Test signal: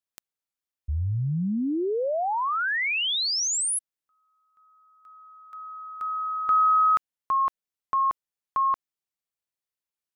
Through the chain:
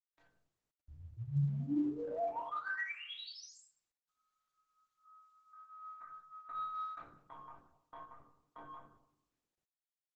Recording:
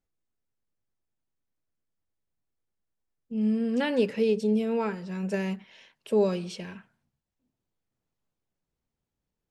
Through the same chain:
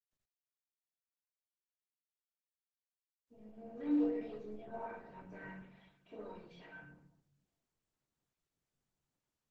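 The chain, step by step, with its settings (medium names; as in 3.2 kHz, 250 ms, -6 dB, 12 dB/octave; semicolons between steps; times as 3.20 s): low-pass 1.6 kHz 12 dB/octave; hum notches 50/100/150/200/250/300/350/400/450/500 Hz; spectral noise reduction 29 dB; compression 1.5:1, threshold -41 dBFS; chorus voices 4, 0.22 Hz, delay 26 ms, depth 2.8 ms; saturation -24 dBFS; inharmonic resonator 140 Hz, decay 0.57 s, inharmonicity 0.03; simulated room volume 2000 m³, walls furnished, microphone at 2.9 m; trim +7.5 dB; Opus 10 kbps 48 kHz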